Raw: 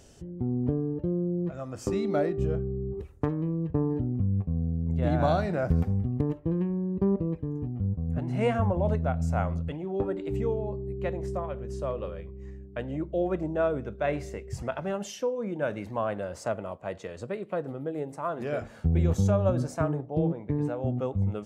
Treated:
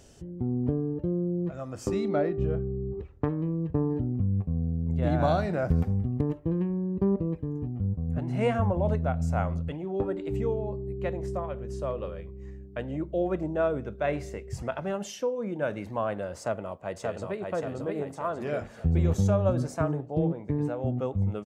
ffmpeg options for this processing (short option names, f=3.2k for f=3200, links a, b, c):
-filter_complex "[0:a]asettb=1/sr,asplit=3[a][b][c];[a]atrim=end=2.084[d];[b]atrim=start=2.08:end=3.33,asetpts=PTS-STARTPTS,afade=t=in:d=0.004:c=qsin,afade=t=out:st=1.246:d=0.004:c=qsin,lowpass=3.5k[e];[c]atrim=start=3.326[f];[d][e]acrossfade=d=0.004:c1=hsin:c2=qsin[g];[g][f]acrossfade=d=0.004:c1=qsin:c2=hsin,asplit=2[h][i];[i]afade=t=in:st=16.38:d=0.01,afade=t=out:st=17.52:d=0.01,aecho=0:1:580|1160|1740|2320|2900|3480|4060:0.707946|0.353973|0.176986|0.0884932|0.0442466|0.0221233|0.0110617[j];[h][j]amix=inputs=2:normalize=0"